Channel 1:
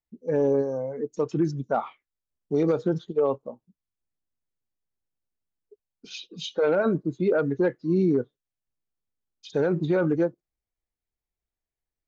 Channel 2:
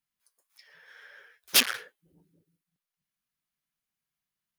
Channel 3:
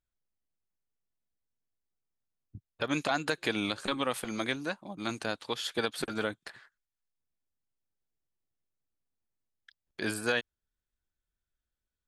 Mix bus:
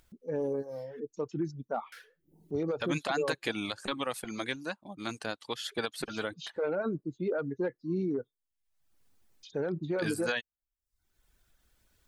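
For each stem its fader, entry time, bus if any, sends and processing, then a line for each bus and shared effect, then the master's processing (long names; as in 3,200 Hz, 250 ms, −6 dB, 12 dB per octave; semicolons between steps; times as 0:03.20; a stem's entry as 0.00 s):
−8.5 dB, 0.00 s, no send, no processing
−6.0 dB, 0.20 s, muted 0:01.00–0:01.92, no send, random phases in long frames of 200 ms; downward compressor 2 to 1, threshold −35 dBFS, peak gain reduction 9 dB
−2.0 dB, 0.00 s, no send, no processing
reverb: not used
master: reverb reduction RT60 0.54 s; upward compression, threshold −49 dBFS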